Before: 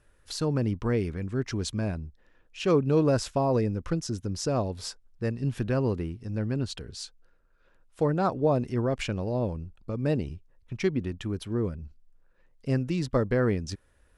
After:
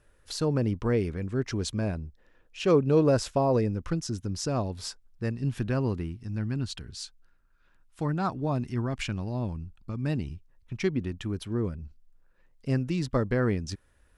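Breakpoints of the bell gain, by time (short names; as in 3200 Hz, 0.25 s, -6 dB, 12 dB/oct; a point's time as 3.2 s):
bell 500 Hz 0.8 oct
3.49 s +2 dB
3.92 s -4.5 dB
5.81 s -4.5 dB
6.33 s -12.5 dB
10.16 s -12.5 dB
10.8 s -3 dB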